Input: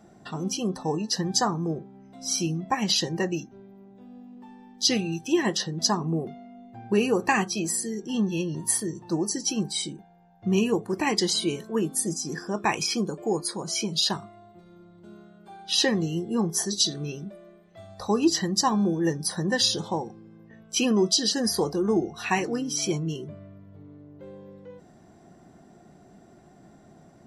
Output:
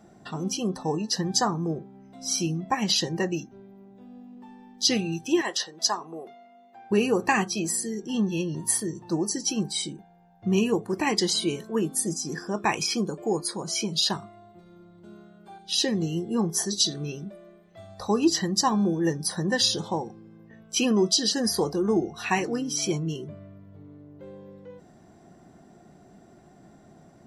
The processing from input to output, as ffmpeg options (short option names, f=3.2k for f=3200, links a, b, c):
-filter_complex "[0:a]asettb=1/sr,asplit=3[a][b][c];[a]atrim=end=5.414[d];[b]atrim=start=5.41:end=6.91,asetpts=PTS-STARTPTS,afade=t=in:d=0.004:c=qsin,afade=t=out:st=1.496:d=0.004:c=qsin,highpass=600[e];[c]atrim=start=6.906[f];[d][e]acrossfade=d=0.004:c1=hsin:c2=qsin[g];[g][f]acrossfade=d=0.004:c1=qsin:c2=hsin,asettb=1/sr,asplit=3[h][i][j];[h]atrim=end=15.584[k];[i]atrim=start=15.58:end=16.01,asetpts=PTS-STARTPTS,afade=t=in:d=0.004:c=qsin,afade=t=out:st=0.426:d=0.004:c=qsin,equalizer=f=1.2k:t=o:w=1.9:g=-10.5[l];[j]atrim=start=16.006[m];[k][l]acrossfade=d=0.004:c1=hsin:c2=qsin[n];[n][m]acrossfade=d=0.004:c1=qsin:c2=hsin"